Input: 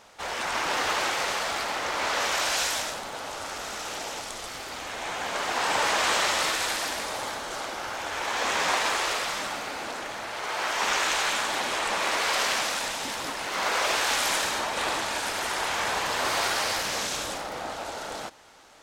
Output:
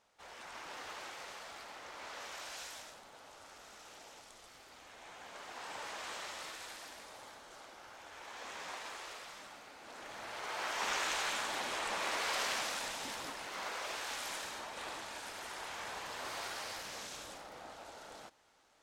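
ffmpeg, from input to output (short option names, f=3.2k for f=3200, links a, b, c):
-af "volume=-10dB,afade=t=in:st=9.81:d=0.49:silence=0.316228,afade=t=out:st=13.14:d=0.63:silence=0.501187"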